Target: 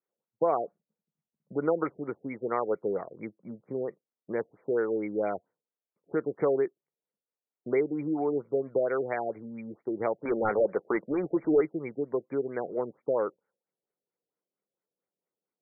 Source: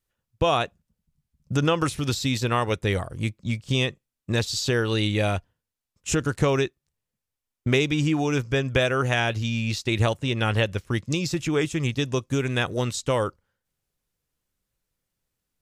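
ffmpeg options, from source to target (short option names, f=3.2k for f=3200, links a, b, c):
-filter_complex "[0:a]highpass=f=220:w=0.5412,highpass=f=220:w=1.3066,equalizer=f=250:t=q:w=4:g=-7,equalizer=f=440:t=q:w=4:g=4,equalizer=f=1.1k:t=q:w=4:g=-3,equalizer=f=1.7k:t=q:w=4:g=-8,lowpass=f=4.2k:w=0.5412,lowpass=f=4.2k:w=1.3066,asettb=1/sr,asplit=3[a][b][c];[a]atrim=end=10.254[d];[b]atrim=start=10.25:end=11.61,asetpts=PTS-STARTPTS,afade=t=in:d=0.004:c=qsin,afade=t=out:st=1.356:d=0.004:c=qsin,asplit=2[e][f];[f]highpass=f=720:p=1,volume=22dB,asoftclip=type=tanh:threshold=-10dB[g];[e][g]amix=inputs=2:normalize=0,lowpass=f=1.2k:p=1,volume=-6dB[h];[c]atrim=start=11.606[i];[d][h]acrossfade=d=0.004:c1=hsin:c2=qsin[j];[j][i]acrossfade=d=0.004:c1=qsin:c2=hsin,afftfilt=real='re*lt(b*sr/1024,720*pow(2400/720,0.5+0.5*sin(2*PI*4.4*pts/sr)))':imag='im*lt(b*sr/1024,720*pow(2400/720,0.5+0.5*sin(2*PI*4.4*pts/sr)))':win_size=1024:overlap=0.75,volume=-3.5dB"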